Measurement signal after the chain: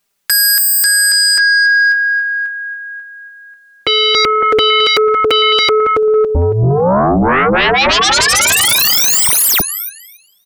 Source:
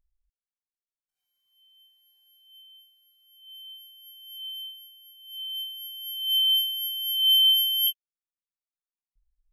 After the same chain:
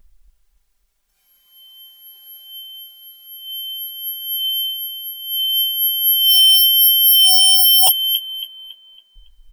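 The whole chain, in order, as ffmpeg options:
-filter_complex "[0:a]aecho=1:1:5:0.83,asplit=2[a][b];[b]adelay=278,lowpass=f=2.9k:p=1,volume=-9.5dB,asplit=2[c][d];[d]adelay=278,lowpass=f=2.9k:p=1,volume=0.52,asplit=2[e][f];[f]adelay=278,lowpass=f=2.9k:p=1,volume=0.52,asplit=2[g][h];[h]adelay=278,lowpass=f=2.9k:p=1,volume=0.52,asplit=2[i][j];[j]adelay=278,lowpass=f=2.9k:p=1,volume=0.52,asplit=2[k][l];[l]adelay=278,lowpass=f=2.9k:p=1,volume=0.52[m];[a][c][e][g][i][k][m]amix=inputs=7:normalize=0,aeval=exprs='0.398*sin(PI/2*7.08*val(0)/0.398)':c=same"

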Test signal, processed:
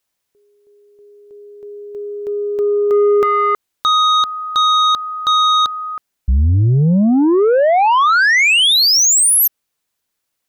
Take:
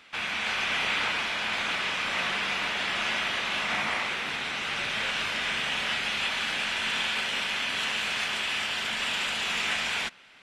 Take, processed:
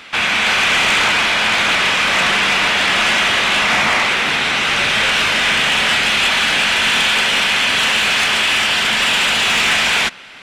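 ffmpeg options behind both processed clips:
-af "aeval=exprs='0.178*sin(PI/2*2.24*val(0)/0.178)':c=same,acontrast=37"

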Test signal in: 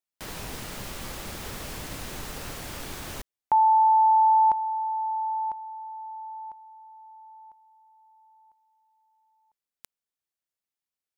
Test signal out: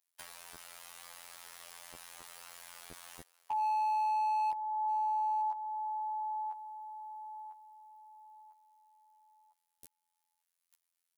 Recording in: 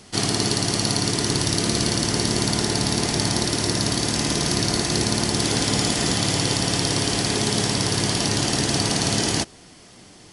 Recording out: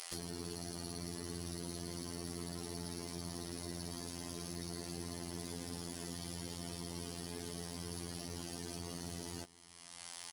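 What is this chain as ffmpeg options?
-filter_complex "[0:a]acrossover=split=570[a][b];[a]acrusher=bits=4:mix=0:aa=0.000001[c];[b]alimiter=limit=-13.5dB:level=0:latency=1:release=389[d];[c][d]amix=inputs=2:normalize=0,highshelf=f=5.5k:g=3.5,afftfilt=real='hypot(re,im)*cos(PI*b)':imag='0':win_size=2048:overlap=0.75,acompressor=threshold=-36dB:ratio=5:attack=1.1:release=475:knee=6:detection=rms,aecho=1:1:893:0.0794,volume=34.5dB,asoftclip=hard,volume=-34.5dB,equalizer=f=10k:t=o:w=0.23:g=6.5,volume=6dB"

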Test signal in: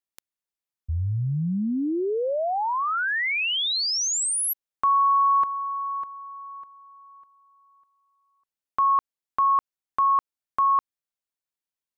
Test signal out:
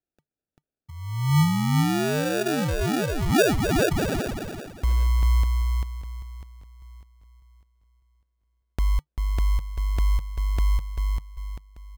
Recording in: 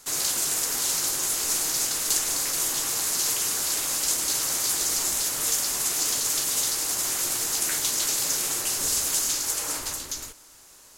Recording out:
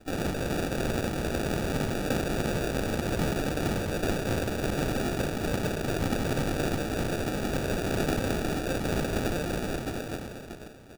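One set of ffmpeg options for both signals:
-filter_complex "[0:a]highpass=f=120:w=0.5412,highpass=f=120:w=1.3066,equalizer=f=150:t=q:w=4:g=10,equalizer=f=250:t=q:w=4:g=-4,equalizer=f=520:t=q:w=4:g=-4,equalizer=f=1.8k:t=q:w=4:g=-7,equalizer=f=2.5k:t=q:w=4:g=9,lowpass=f=6.8k:w=0.5412,lowpass=f=6.8k:w=1.3066,asplit=2[a][b];[b]adelay=393,lowpass=f=4.5k:p=1,volume=-3dB,asplit=2[c][d];[d]adelay=393,lowpass=f=4.5k:p=1,volume=0.37,asplit=2[e][f];[f]adelay=393,lowpass=f=4.5k:p=1,volume=0.37,asplit=2[g][h];[h]adelay=393,lowpass=f=4.5k:p=1,volume=0.37,asplit=2[i][j];[j]adelay=393,lowpass=f=4.5k:p=1,volume=0.37[k];[a][c][e][g][i][k]amix=inputs=6:normalize=0,acrusher=samples=42:mix=1:aa=0.000001"

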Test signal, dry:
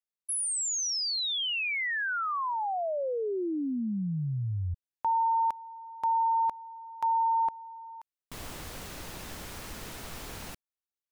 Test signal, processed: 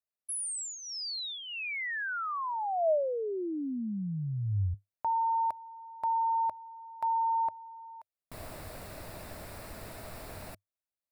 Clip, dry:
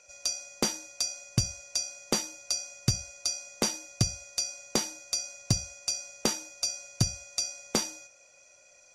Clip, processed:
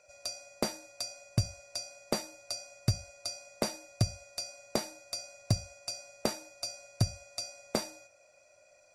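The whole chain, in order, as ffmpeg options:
-af "equalizer=f=100:t=o:w=0.33:g=7,equalizer=f=630:t=o:w=0.33:g=10,equalizer=f=3.15k:t=o:w=0.33:g=-9,equalizer=f=6.3k:t=o:w=0.33:g=-11,volume=-3.5dB"

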